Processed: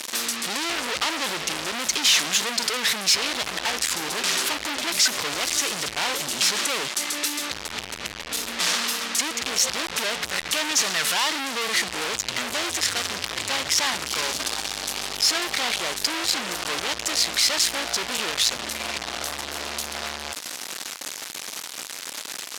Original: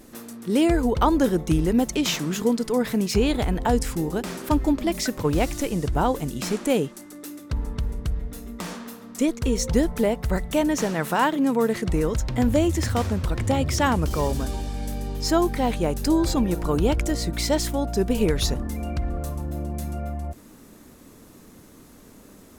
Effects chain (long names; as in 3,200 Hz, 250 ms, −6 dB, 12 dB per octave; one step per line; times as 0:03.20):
in parallel at +1 dB: downward compressor, threshold −27 dBFS, peak gain reduction 12 dB
on the sum: fuzz pedal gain 45 dB, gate −38 dBFS
resonant band-pass 4,200 Hz, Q 0.81